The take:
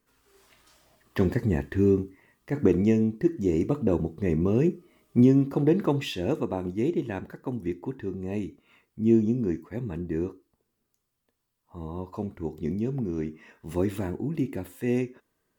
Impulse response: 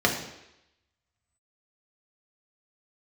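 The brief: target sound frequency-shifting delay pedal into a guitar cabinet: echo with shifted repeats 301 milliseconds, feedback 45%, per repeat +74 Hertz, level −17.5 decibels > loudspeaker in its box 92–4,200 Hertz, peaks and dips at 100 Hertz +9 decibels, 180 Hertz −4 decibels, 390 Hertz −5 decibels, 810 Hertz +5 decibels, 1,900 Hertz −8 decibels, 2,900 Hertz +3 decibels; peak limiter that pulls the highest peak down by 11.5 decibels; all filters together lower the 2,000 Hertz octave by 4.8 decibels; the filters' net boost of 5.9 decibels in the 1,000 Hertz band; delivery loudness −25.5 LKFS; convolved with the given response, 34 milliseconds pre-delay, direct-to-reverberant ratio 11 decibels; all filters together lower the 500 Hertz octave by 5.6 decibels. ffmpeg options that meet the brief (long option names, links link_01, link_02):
-filter_complex "[0:a]equalizer=frequency=500:width_type=o:gain=-5,equalizer=frequency=1000:width_type=o:gain=7,equalizer=frequency=2000:width_type=o:gain=-4.5,alimiter=limit=-21dB:level=0:latency=1,asplit=2[link_01][link_02];[1:a]atrim=start_sample=2205,adelay=34[link_03];[link_02][link_03]afir=irnorm=-1:irlink=0,volume=-26.5dB[link_04];[link_01][link_04]amix=inputs=2:normalize=0,asplit=5[link_05][link_06][link_07][link_08][link_09];[link_06]adelay=301,afreqshift=74,volume=-17.5dB[link_10];[link_07]adelay=602,afreqshift=148,volume=-24.4dB[link_11];[link_08]adelay=903,afreqshift=222,volume=-31.4dB[link_12];[link_09]adelay=1204,afreqshift=296,volume=-38.3dB[link_13];[link_05][link_10][link_11][link_12][link_13]amix=inputs=5:normalize=0,highpass=92,equalizer=frequency=100:width_type=q:width=4:gain=9,equalizer=frequency=180:width_type=q:width=4:gain=-4,equalizer=frequency=390:width_type=q:width=4:gain=-5,equalizer=frequency=810:width_type=q:width=4:gain=5,equalizer=frequency=1900:width_type=q:width=4:gain=-8,equalizer=frequency=2900:width_type=q:width=4:gain=3,lowpass=frequency=4200:width=0.5412,lowpass=frequency=4200:width=1.3066,volume=7dB"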